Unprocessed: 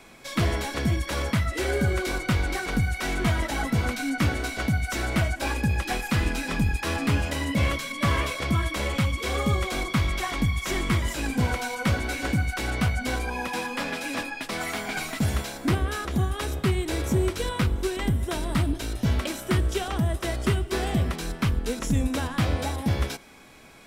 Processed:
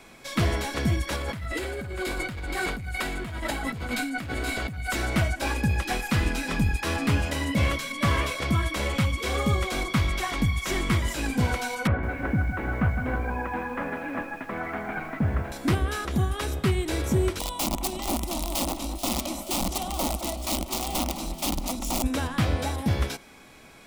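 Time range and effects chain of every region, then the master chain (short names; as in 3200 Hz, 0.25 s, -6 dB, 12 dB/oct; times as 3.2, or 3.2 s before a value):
1.16–4.96 notch 5800 Hz, Q 5.2 + hard clip -20 dBFS + negative-ratio compressor -31 dBFS
11.87–15.52 LPF 1900 Hz 24 dB/oct + lo-fi delay 0.16 s, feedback 55%, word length 8-bit, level -11 dB
17.39–22.04 wrapped overs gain 20 dB + fixed phaser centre 440 Hz, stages 6 + echo with dull and thin repeats by turns 0.217 s, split 2400 Hz, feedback 60%, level -9 dB
whole clip: dry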